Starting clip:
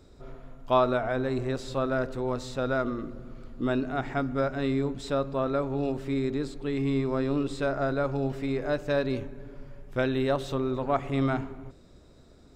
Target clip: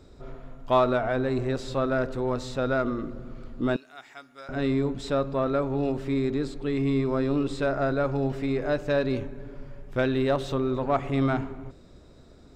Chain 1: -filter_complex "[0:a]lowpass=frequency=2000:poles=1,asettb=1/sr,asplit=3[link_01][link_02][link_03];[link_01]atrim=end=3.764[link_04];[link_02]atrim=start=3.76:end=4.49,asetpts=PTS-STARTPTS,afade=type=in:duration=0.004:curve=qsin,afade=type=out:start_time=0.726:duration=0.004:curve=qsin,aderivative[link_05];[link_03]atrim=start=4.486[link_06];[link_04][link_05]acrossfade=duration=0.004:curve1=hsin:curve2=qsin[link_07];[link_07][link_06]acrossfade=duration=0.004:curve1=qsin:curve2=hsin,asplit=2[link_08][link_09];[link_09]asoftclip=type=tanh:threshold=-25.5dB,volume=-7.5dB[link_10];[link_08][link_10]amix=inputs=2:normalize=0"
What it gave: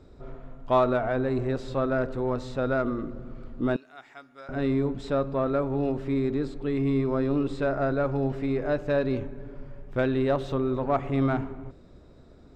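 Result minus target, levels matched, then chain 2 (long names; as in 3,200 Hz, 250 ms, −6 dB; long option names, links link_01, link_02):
8,000 Hz band −8.0 dB
-filter_complex "[0:a]lowpass=frequency=7400:poles=1,asettb=1/sr,asplit=3[link_01][link_02][link_03];[link_01]atrim=end=3.764[link_04];[link_02]atrim=start=3.76:end=4.49,asetpts=PTS-STARTPTS,afade=type=in:duration=0.004:curve=qsin,afade=type=out:start_time=0.726:duration=0.004:curve=qsin,aderivative[link_05];[link_03]atrim=start=4.486[link_06];[link_04][link_05]acrossfade=duration=0.004:curve1=hsin:curve2=qsin[link_07];[link_07][link_06]acrossfade=duration=0.004:curve1=qsin:curve2=hsin,asplit=2[link_08][link_09];[link_09]asoftclip=type=tanh:threshold=-25.5dB,volume=-7.5dB[link_10];[link_08][link_10]amix=inputs=2:normalize=0"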